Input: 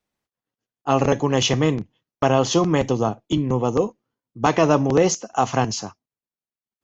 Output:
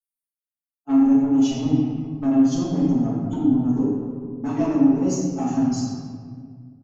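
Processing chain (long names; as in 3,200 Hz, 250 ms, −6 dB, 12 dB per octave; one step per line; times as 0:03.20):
spectral dynamics exaggerated over time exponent 1.5
notch filter 1,200 Hz, Q 26
comb filter 7.2 ms, depth 96%
harmonic and percussive parts rebalanced percussive −5 dB
octave-band graphic EQ 125/250/500/1,000/2,000/4,000 Hz −9/+11/−9/−5/−12/−6 dB
downward compressor, threshold −22 dBFS, peak gain reduction 11 dB
soft clipping −20.5 dBFS, distortion −17 dB
convolution reverb RT60 1.9 s, pre-delay 3 ms, DRR −10 dB
level −4.5 dB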